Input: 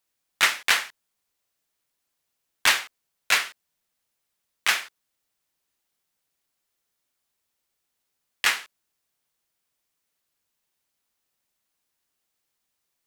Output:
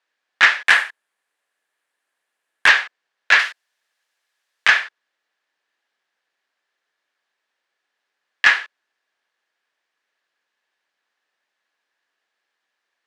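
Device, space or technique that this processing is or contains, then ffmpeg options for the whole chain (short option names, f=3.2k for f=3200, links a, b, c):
intercom: -filter_complex "[0:a]asettb=1/sr,asplit=3[a][b][c];[a]atrim=end=3.394[d];[b]atrim=start=3.39:end=4.68,asetpts=PTS-STARTPTS,afade=t=in:d=0.004:c=qsin,afade=t=out:st=1.286:d=0.004:c=qsin,aemphasis=mode=production:type=bsi[e];[c]atrim=start=4.676[f];[d][e]acrossfade=d=0.004:c1=hsin:c2=qsin[g];[g][f]acrossfade=d=0.004:c1=qsin:c2=hsin,highpass=420,lowpass=3.5k,equalizer=f=1.7k:t=o:w=0.26:g=10,asoftclip=type=tanh:threshold=-9dB,acrossover=split=7900[h][i];[i]acompressor=threshold=-55dB:ratio=4:attack=1:release=60[j];[h][j]amix=inputs=2:normalize=0,asettb=1/sr,asplit=3[k][l][m];[k]atrim=end=0.674[n];[l]atrim=start=0.67:end=2.68,asetpts=PTS-STARTPTS,afade=t=in:d=0.004:c=qsin,afade=t=out:st=2.006:d=0.004:c=qsin,highshelf=f=7.4k:t=q:w=1.5:g=10[o];[m]atrim=start=2.676[p];[n][o]acrossfade=d=0.004:c1=hsin:c2=qsin[q];[q][p]acrossfade=d=0.004:c1=qsin:c2=hsin,volume=7dB"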